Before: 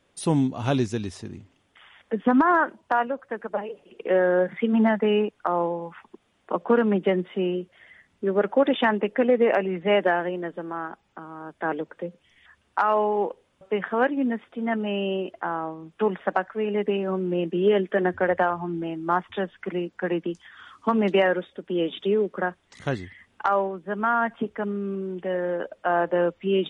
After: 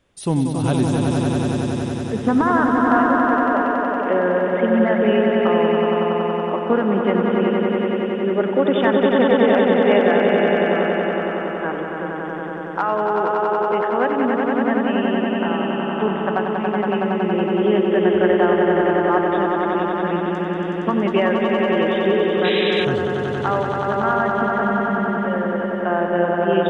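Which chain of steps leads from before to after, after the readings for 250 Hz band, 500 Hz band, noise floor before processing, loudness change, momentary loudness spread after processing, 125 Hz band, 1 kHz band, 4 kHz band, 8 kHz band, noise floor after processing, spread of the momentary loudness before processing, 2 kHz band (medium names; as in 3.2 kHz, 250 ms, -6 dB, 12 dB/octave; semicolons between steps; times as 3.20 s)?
+7.5 dB, +6.5 dB, -67 dBFS, +6.0 dB, 7 LU, +8.0 dB, +6.0 dB, +7.5 dB, no reading, -26 dBFS, 12 LU, +6.0 dB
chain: bass shelf 99 Hz +10.5 dB; echo with a slow build-up 93 ms, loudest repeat 5, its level -5 dB; painted sound noise, 22.44–22.85 s, 1.6–4 kHz -25 dBFS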